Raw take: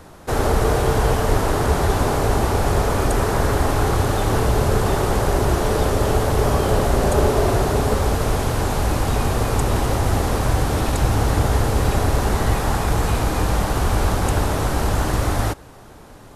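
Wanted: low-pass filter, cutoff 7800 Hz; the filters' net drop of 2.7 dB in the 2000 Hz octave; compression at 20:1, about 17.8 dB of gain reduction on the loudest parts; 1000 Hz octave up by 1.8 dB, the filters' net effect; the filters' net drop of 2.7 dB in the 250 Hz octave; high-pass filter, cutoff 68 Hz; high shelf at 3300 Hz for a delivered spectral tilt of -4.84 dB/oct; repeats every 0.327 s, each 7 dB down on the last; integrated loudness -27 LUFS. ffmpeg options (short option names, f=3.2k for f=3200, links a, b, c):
-af "highpass=68,lowpass=7.8k,equalizer=f=250:t=o:g=-4,equalizer=f=1k:t=o:g=3.5,equalizer=f=2k:t=o:g=-7,highshelf=f=3.3k:g=6,acompressor=threshold=-33dB:ratio=20,aecho=1:1:327|654|981|1308|1635:0.447|0.201|0.0905|0.0407|0.0183,volume=9.5dB"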